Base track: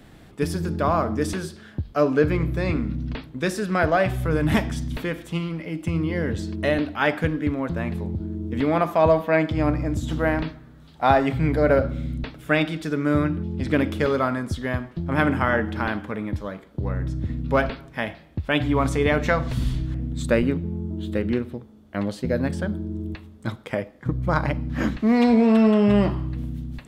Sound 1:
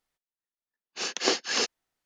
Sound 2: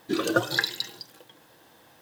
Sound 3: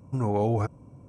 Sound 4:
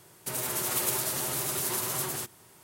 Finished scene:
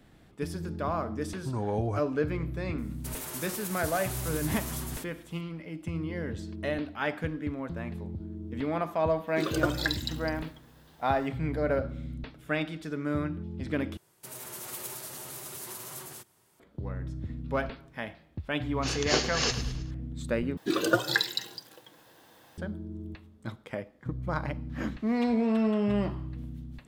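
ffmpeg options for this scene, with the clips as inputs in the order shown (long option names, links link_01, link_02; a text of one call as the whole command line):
ffmpeg -i bed.wav -i cue0.wav -i cue1.wav -i cue2.wav -i cue3.wav -filter_complex "[4:a]asplit=2[link_01][link_02];[2:a]asplit=2[link_03][link_04];[0:a]volume=-9.5dB[link_05];[link_01]alimiter=limit=-17dB:level=0:latency=1:release=254[link_06];[1:a]aecho=1:1:106|212|318|424|530:0.299|0.134|0.0605|0.0272|0.0122[link_07];[link_05]asplit=3[link_08][link_09][link_10];[link_08]atrim=end=13.974[link_11];[link_02]atrim=end=2.63,asetpts=PTS-STARTPTS,volume=-10.5dB[link_12];[link_09]atrim=start=16.596:end=20.574[link_13];[link_04]atrim=end=2.01,asetpts=PTS-STARTPTS,volume=-1dB[link_14];[link_10]atrim=start=22.576[link_15];[3:a]atrim=end=1.08,asetpts=PTS-STARTPTS,volume=-5.5dB,afade=type=in:duration=0.004:curve=hsin,afade=type=out:start_time=1.076:duration=0.004:curve=hsin,adelay=1330[link_16];[link_06]atrim=end=2.63,asetpts=PTS-STARTPTS,volume=-7dB,afade=type=in:duration=0.004:curve=hsin,afade=type=out:start_time=2.626:duration=0.004:curve=hsin,adelay=2780[link_17];[link_03]atrim=end=2.01,asetpts=PTS-STARTPTS,volume=-5dB,afade=type=in:duration=0.004:curve=hsin,afade=type=out:start_time=2.006:duration=0.004:curve=hsin,adelay=9270[link_18];[link_07]atrim=end=2.05,asetpts=PTS-STARTPTS,volume=-2dB,afade=type=in:duration=0.004:curve=hsin,afade=type=out:start_time=2.046:duration=0.004:curve=hsin,adelay=17860[link_19];[link_11][link_12]acrossfade=duration=0.004:curve1=hsin:curve2=hsin[link_20];[link_20][link_13]acrossfade=duration=0.004:curve1=hsin:curve2=hsin[link_21];[link_21][link_14]acrossfade=duration=0.004:curve1=hsin:curve2=hsin[link_22];[link_22][link_15]acrossfade=duration=0.004:curve1=hsin:curve2=hsin[link_23];[link_23][link_16][link_17][link_18][link_19]amix=inputs=5:normalize=0" out.wav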